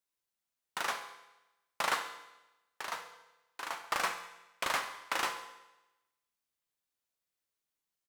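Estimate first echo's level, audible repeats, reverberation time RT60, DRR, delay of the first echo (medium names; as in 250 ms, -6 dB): -15.5 dB, 2, 1.0 s, 6.0 dB, 68 ms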